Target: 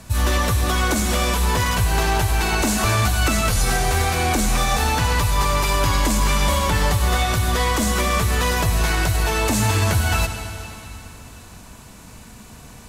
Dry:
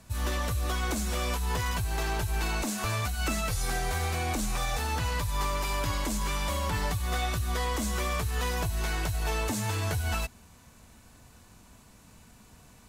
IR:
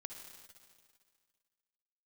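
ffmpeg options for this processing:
-filter_complex "[0:a]alimiter=limit=0.0708:level=0:latency=1,asplit=2[s0][s1];[1:a]atrim=start_sample=2205,asetrate=27783,aresample=44100[s2];[s1][s2]afir=irnorm=-1:irlink=0,volume=1.41[s3];[s0][s3]amix=inputs=2:normalize=0,volume=2.11"

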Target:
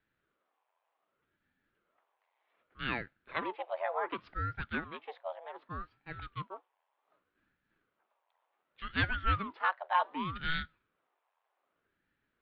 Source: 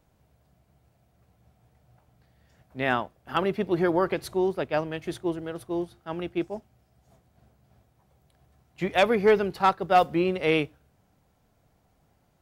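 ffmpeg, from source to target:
-af "highpass=f=340:t=q:w=0.5412,highpass=f=340:t=q:w=1.307,lowpass=f=3200:t=q:w=0.5176,lowpass=f=3200:t=q:w=0.7071,lowpass=f=3200:t=q:w=1.932,afreqshift=260,aeval=exprs='val(0)*sin(2*PI*400*n/s+400*0.9/0.66*sin(2*PI*0.66*n/s))':c=same,volume=0.473"

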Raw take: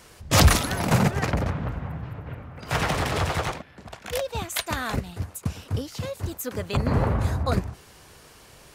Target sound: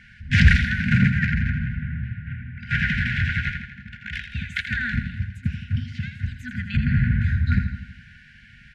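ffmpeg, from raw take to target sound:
-filter_complex "[0:a]afftfilt=real='re*(1-between(b*sr/4096,250,1400))':imag='im*(1-between(b*sr/4096,250,1400))':win_size=4096:overlap=0.75,lowpass=f=2000:t=q:w=1.6,asplit=2[s0][s1];[s1]aecho=0:1:82|164|246|328|410|492:0.355|0.195|0.107|0.059|0.0325|0.0179[s2];[s0][s2]amix=inputs=2:normalize=0,aeval=exprs='0.501*(cos(1*acos(clip(val(0)/0.501,-1,1)))-cos(1*PI/2))+0.0178*(cos(2*acos(clip(val(0)/0.501,-1,1)))-cos(2*PI/2))+0.0398*(cos(3*acos(clip(val(0)/0.501,-1,1)))-cos(3*PI/2))+0.0224*(cos(5*acos(clip(val(0)/0.501,-1,1)))-cos(5*PI/2))':c=same,volume=1.5"

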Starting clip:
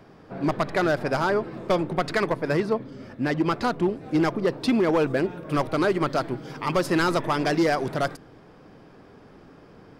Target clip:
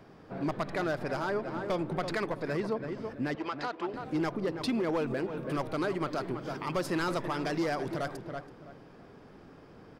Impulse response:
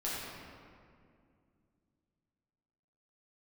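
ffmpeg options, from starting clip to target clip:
-filter_complex "[0:a]asettb=1/sr,asplit=3[s0][s1][s2];[s0]atrim=end=3.354[s3];[s1]atrim=start=3.35:end=3.94,asetpts=PTS-STARTPTS,afade=t=in:d=0.004:c=qsin,afade=t=out:st=0.586:d=0.004:c=qsin,highpass=540,lowpass=5500[s4];[s2]atrim=start=3.936[s5];[s3][s4]acrossfade=d=0.004:c1=hsin:c2=qsin[s6];[s6][s5]acrossfade=d=0.004:c1=qsin:c2=hsin,asplit=2[s7][s8];[s8]adelay=329,lowpass=f=2300:p=1,volume=0.282,asplit=2[s9][s10];[s10]adelay=329,lowpass=f=2300:p=1,volume=0.26,asplit=2[s11][s12];[s12]adelay=329,lowpass=f=2300:p=1,volume=0.26[s13];[s7][s9][s11][s13]amix=inputs=4:normalize=0,alimiter=limit=0.0944:level=0:latency=1:release=141,volume=0.668"

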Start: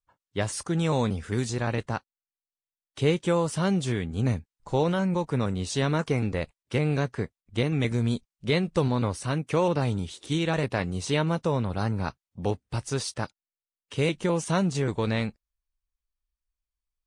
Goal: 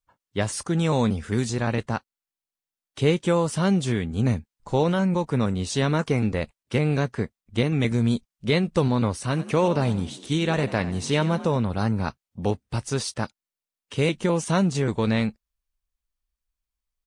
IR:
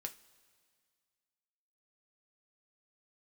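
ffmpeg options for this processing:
-filter_complex "[0:a]equalizer=f=220:t=o:w=0.27:g=4.5,asplit=3[s0][s1][s2];[s0]afade=t=out:st=9.31:d=0.02[s3];[s1]asplit=5[s4][s5][s6][s7][s8];[s5]adelay=91,afreqshift=50,volume=0.178[s9];[s6]adelay=182,afreqshift=100,volume=0.075[s10];[s7]adelay=273,afreqshift=150,volume=0.0313[s11];[s8]adelay=364,afreqshift=200,volume=0.0132[s12];[s4][s9][s10][s11][s12]amix=inputs=5:normalize=0,afade=t=in:st=9.31:d=0.02,afade=t=out:st=11.56:d=0.02[s13];[s2]afade=t=in:st=11.56:d=0.02[s14];[s3][s13][s14]amix=inputs=3:normalize=0,volume=1.33"

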